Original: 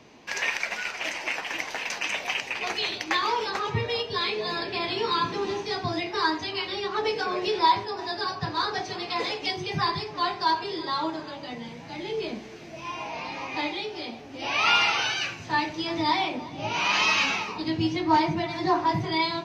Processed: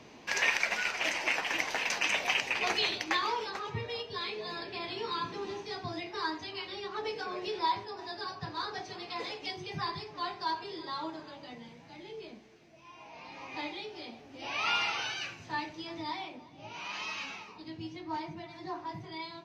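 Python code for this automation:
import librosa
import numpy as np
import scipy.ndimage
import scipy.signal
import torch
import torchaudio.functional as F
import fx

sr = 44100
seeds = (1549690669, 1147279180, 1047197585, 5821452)

y = fx.gain(x, sr, db=fx.line((2.75, -0.5), (3.6, -9.5), (11.46, -9.5), (12.88, -18.5), (13.55, -9.0), (15.42, -9.0), (16.5, -16.0)))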